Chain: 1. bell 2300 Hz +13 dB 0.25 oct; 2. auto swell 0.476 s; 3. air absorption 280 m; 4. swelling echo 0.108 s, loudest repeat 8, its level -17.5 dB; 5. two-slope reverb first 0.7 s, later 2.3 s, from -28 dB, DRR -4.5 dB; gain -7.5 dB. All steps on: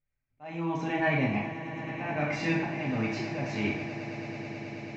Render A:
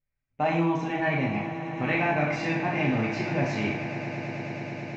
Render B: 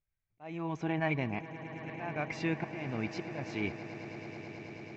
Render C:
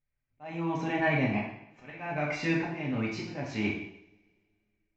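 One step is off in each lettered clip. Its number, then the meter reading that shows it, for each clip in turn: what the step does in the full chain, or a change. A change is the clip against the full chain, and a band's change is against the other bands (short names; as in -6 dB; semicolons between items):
2, crest factor change -1.5 dB; 5, echo-to-direct 6.0 dB to -6.0 dB; 4, momentary loudness spread change +5 LU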